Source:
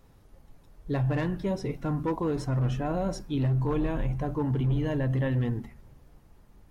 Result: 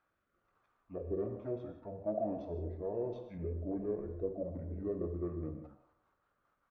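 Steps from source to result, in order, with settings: bass shelf 150 Hz +7 dB; auto-wah 660–2200 Hz, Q 4, down, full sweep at -20 dBFS; pitch shift -7.5 st; rotary cabinet horn 1.2 Hz, later 5 Hz, at 4.15 s; band-passed feedback delay 119 ms, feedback 62%, band-pass 820 Hz, level -15 dB; gated-style reverb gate 200 ms flat, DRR 6.5 dB; trim +4 dB

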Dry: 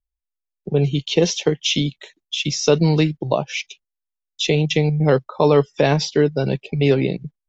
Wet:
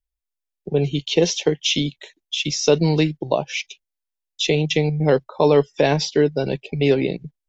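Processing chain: graphic EQ with 31 bands 125 Hz -8 dB, 200 Hz -5 dB, 1.25 kHz -7 dB

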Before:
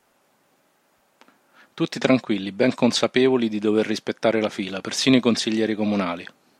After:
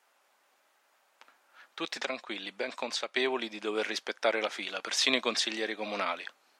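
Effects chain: Bessel high-pass 880 Hz, order 2; treble shelf 6.1 kHz -5.5 dB; 1.84–3.17 s: compression 4:1, threshold -30 dBFS, peak gain reduction 9 dB; trim -1.5 dB

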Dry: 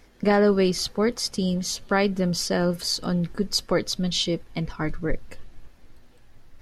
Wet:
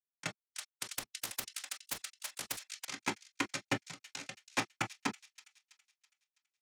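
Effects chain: hum notches 50/100/150/200/250/300/350/400 Hz; dynamic bell 370 Hz, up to +6 dB, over -34 dBFS, Q 1.1; peak limiter -15.5 dBFS, peak gain reduction 9.5 dB; compression 2.5:1, threshold -33 dBFS, peak gain reduction 9.5 dB; bit crusher 4-bit; noise-vocoded speech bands 4; saturation -30 dBFS, distortion -11 dB; wow and flutter 27 cents; feedback echo behind a high-pass 328 ms, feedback 43%, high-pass 3.2 kHz, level -13.5 dB; reverberation, pre-delay 3 ms, DRR 3.5 dB; 0.44–2.85 s: spectrum-flattening compressor 10:1; trim +5 dB

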